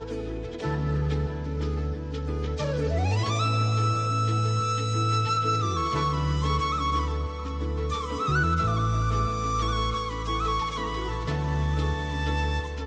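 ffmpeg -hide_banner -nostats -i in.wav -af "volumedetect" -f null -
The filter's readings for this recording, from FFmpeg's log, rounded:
mean_volume: -26.2 dB
max_volume: -12.4 dB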